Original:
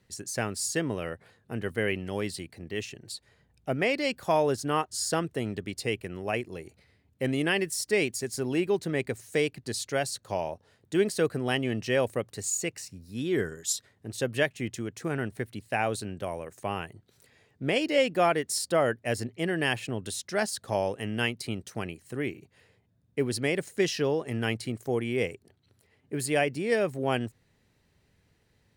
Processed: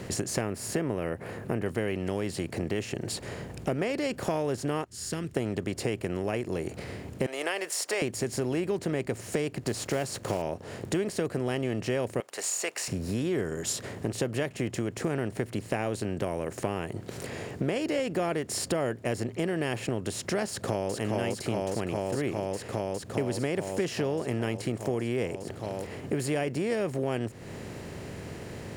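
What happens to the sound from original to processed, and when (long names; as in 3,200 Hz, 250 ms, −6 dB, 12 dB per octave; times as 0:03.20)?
0:00.41–0:01.66: flat-topped bell 5,100 Hz −10.5 dB
0:04.84–0:05.37: guitar amp tone stack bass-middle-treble 6-0-2
0:07.26–0:08.02: high-pass filter 610 Hz 24 dB per octave
0:09.63–0:10.43: one scale factor per block 5 bits
0:12.20–0:12.88: Bessel high-pass filter 950 Hz, order 4
0:20.48–0:20.93: delay throw 410 ms, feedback 75%, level −0.5 dB
whole clip: compressor on every frequency bin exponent 0.6; low-shelf EQ 490 Hz +10 dB; downward compressor 4 to 1, threshold −30 dBFS; level +1.5 dB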